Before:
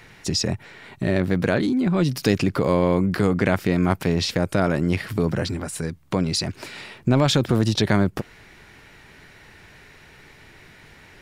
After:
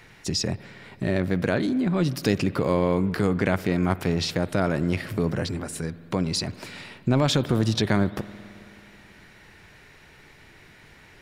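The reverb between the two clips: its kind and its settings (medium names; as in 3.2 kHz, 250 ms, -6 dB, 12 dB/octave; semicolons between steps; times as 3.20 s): spring tank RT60 2.9 s, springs 54 ms, chirp 45 ms, DRR 16 dB; trim -3 dB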